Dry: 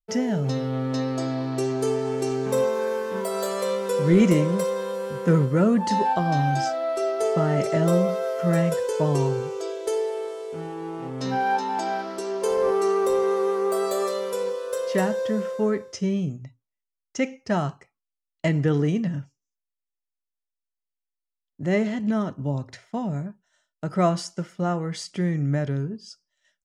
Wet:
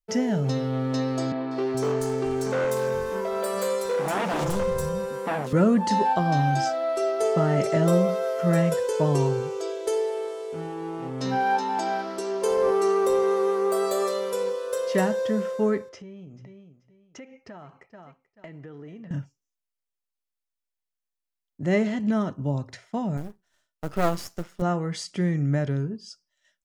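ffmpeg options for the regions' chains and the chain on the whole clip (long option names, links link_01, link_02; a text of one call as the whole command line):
ffmpeg -i in.wav -filter_complex "[0:a]asettb=1/sr,asplit=3[link_01][link_02][link_03];[link_01]atrim=end=1.324[link_04];[link_02]atrim=start=1.32:end=5.53,asetpts=PTS-STARTPTS,afade=type=in:duration=0.004:curve=qsin,afade=type=out:start_time=4.206:duration=0.004:curve=qsin,aeval=exprs='0.106*(abs(mod(val(0)/0.106+3,4)-2)-1)':channel_layout=same,acrossover=split=170|3600[link_05][link_06][link_07];[link_07]adelay=190[link_08];[link_05]adelay=420[link_09];[link_09][link_06][link_08]amix=inputs=3:normalize=0,atrim=end_sample=185661[link_10];[link_03]atrim=start=5.526[link_11];[link_04][link_10]acrossfade=duration=0.004:curve1=hsin:curve2=qsin[link_12];[link_12][link_11]acrossfade=duration=0.004:curve1=qsin:curve2=hsin,asettb=1/sr,asplit=3[link_13][link_14][link_15];[link_13]atrim=end=15.894[link_16];[link_14]atrim=start=15.89:end=19.11,asetpts=PTS-STARTPTS,afade=type=in:duration=0.004:curve=qsin,afade=type=out:start_time=3.216:duration=0.004:curve=qsin,bass=frequency=250:gain=-7,treble=frequency=4000:gain=-15,aecho=1:1:435|870:0.1|0.026,atrim=end_sample=142002,acompressor=threshold=-40dB:ratio=6:attack=3.2:release=140:knee=1:detection=peak[link_17];[link_15]atrim=start=19.106[link_18];[link_16][link_17]acrossfade=duration=0.004:curve1=hsin:curve2=qsin[link_19];[link_19][link_18]acrossfade=duration=0.004:curve1=qsin:curve2=hsin,asettb=1/sr,asplit=3[link_20][link_21][link_22];[link_20]atrim=end=23.174[link_23];[link_21]atrim=start=23.17:end=24.62,asetpts=PTS-STARTPTS,afade=type=in:duration=0.004:curve=qsin,afade=type=out:start_time=1.446:duration=0.004:curve=qsin,aeval=exprs='max(val(0),0)':channel_layout=same,acrusher=bits=6:mode=log:mix=0:aa=0.000001[link_24];[link_22]atrim=start=24.616[link_25];[link_23][link_24]acrossfade=duration=0.004:curve1=hsin:curve2=qsin[link_26];[link_26][link_25]acrossfade=duration=0.004:curve1=qsin:curve2=hsin" out.wav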